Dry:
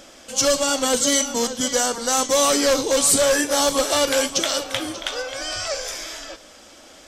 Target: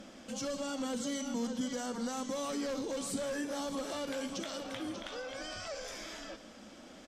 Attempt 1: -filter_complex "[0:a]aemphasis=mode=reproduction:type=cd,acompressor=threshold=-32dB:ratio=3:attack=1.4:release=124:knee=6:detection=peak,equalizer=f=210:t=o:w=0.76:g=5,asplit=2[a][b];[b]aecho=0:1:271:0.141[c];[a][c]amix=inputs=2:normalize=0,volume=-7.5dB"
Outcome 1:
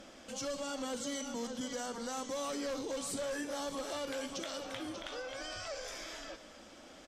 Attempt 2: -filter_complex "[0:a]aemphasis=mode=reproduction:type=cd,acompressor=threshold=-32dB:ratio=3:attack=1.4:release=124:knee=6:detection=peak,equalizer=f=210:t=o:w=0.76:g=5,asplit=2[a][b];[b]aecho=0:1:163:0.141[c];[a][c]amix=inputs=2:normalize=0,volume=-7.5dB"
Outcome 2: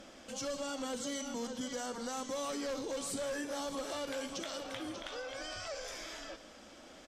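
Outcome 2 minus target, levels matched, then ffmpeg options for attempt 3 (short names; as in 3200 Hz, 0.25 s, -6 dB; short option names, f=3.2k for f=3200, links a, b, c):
250 Hz band -3.0 dB
-filter_complex "[0:a]aemphasis=mode=reproduction:type=cd,acompressor=threshold=-32dB:ratio=3:attack=1.4:release=124:knee=6:detection=peak,equalizer=f=210:t=o:w=0.76:g=13.5,asplit=2[a][b];[b]aecho=0:1:163:0.141[c];[a][c]amix=inputs=2:normalize=0,volume=-7.5dB"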